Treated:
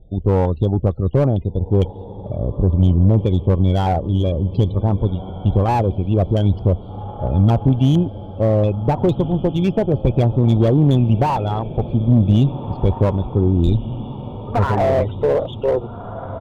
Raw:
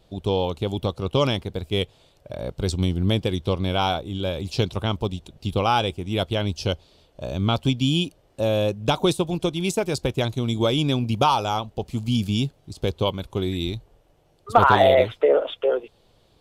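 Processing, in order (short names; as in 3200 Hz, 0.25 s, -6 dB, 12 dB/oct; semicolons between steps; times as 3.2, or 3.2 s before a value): loudest bins only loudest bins 32; downsampling 11025 Hz; LFO low-pass square 2.2 Hz 890–3200 Hz; tilt -4 dB/oct; AGC gain up to 13 dB; on a send: diffused feedback echo 1.63 s, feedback 52%, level -14.5 dB; on the sum: tube stage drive 7 dB, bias 0.45; slew limiter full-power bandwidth 130 Hz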